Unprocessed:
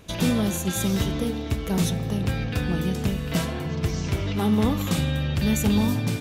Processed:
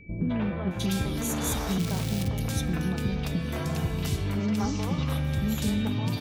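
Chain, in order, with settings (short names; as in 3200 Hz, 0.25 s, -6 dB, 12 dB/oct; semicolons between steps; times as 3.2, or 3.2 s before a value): compressor, threshold -23 dBFS, peak gain reduction 7 dB; 1.08–1.57 Schmitt trigger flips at -46 dBFS; three bands offset in time lows, mids, highs 0.21/0.71 s, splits 430/2300 Hz; whine 2300 Hz -51 dBFS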